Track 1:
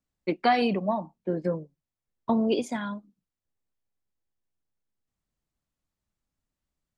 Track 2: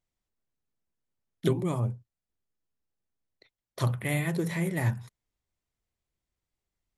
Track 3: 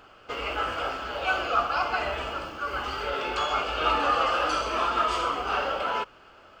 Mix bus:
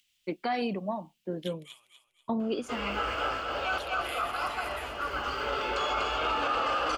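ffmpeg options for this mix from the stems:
ffmpeg -i stem1.wav -i stem2.wav -i stem3.wav -filter_complex "[0:a]volume=-6dB[link_01];[1:a]acompressor=mode=upward:threshold=-42dB:ratio=2.5,highpass=frequency=2900:width_type=q:width=4,volume=-9dB,asplit=3[link_02][link_03][link_04];[link_03]volume=-8.5dB[link_05];[2:a]adelay=2400,volume=-2.5dB,asplit=2[link_06][link_07];[link_07]volume=-4dB[link_08];[link_04]apad=whole_len=396904[link_09];[link_06][link_09]sidechaincompress=threshold=-58dB:ratio=8:attack=7.9:release=143[link_10];[link_05][link_08]amix=inputs=2:normalize=0,aecho=0:1:244|488|732|976|1220:1|0.33|0.109|0.0359|0.0119[link_11];[link_01][link_02][link_10][link_11]amix=inputs=4:normalize=0,alimiter=limit=-20.5dB:level=0:latency=1:release=24" out.wav

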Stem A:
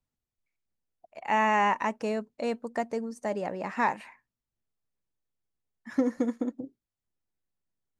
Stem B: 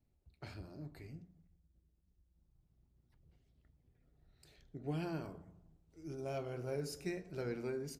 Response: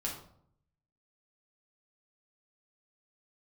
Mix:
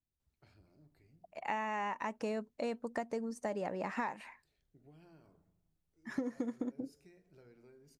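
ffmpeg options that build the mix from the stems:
-filter_complex "[0:a]adelay=200,volume=-2dB[link_01];[1:a]acompressor=threshold=-43dB:ratio=3,volume=-15.5dB[link_02];[link_01][link_02]amix=inputs=2:normalize=0,acompressor=threshold=-33dB:ratio=10"

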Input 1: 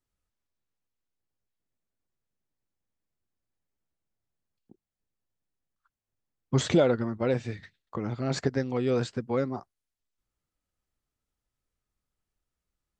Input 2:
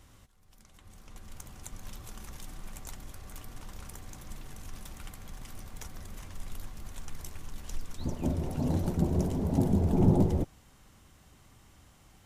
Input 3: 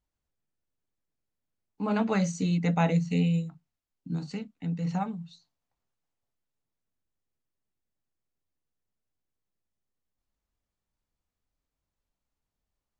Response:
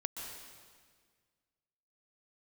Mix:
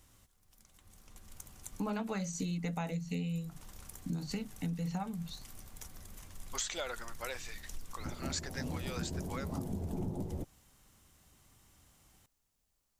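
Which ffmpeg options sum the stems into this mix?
-filter_complex "[0:a]highpass=1100,equalizer=frequency=6900:width_type=o:width=0.77:gain=4.5,volume=-3dB[link_01];[1:a]volume=-8dB[link_02];[2:a]volume=2.5dB[link_03];[link_01][link_02][link_03]amix=inputs=3:normalize=0,highshelf=frequency=5200:gain=9.5,acompressor=threshold=-33dB:ratio=16"

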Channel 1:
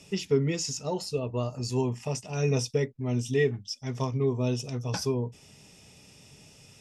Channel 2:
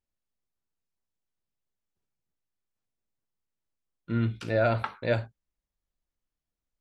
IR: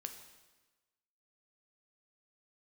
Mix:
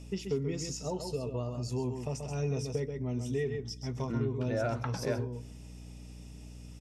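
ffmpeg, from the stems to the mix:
-filter_complex "[0:a]equalizer=frequency=3600:width=0.35:gain=-5.5,volume=-2.5dB,asplit=3[link_01][link_02][link_03];[link_02]volume=-13.5dB[link_04];[link_03]volume=-6.5dB[link_05];[1:a]lowpass=frequency=1900:poles=1,volume=-1.5dB,asplit=2[link_06][link_07];[link_07]volume=-18.5dB[link_08];[2:a]atrim=start_sample=2205[link_09];[link_04][link_08]amix=inputs=2:normalize=0[link_10];[link_10][link_09]afir=irnorm=-1:irlink=0[link_11];[link_05]aecho=0:1:132:1[link_12];[link_01][link_06][link_11][link_12]amix=inputs=4:normalize=0,aeval=exprs='val(0)+0.00501*(sin(2*PI*60*n/s)+sin(2*PI*2*60*n/s)/2+sin(2*PI*3*60*n/s)/3+sin(2*PI*4*60*n/s)/4+sin(2*PI*5*60*n/s)/5)':channel_layout=same,acompressor=threshold=-33dB:ratio=2"

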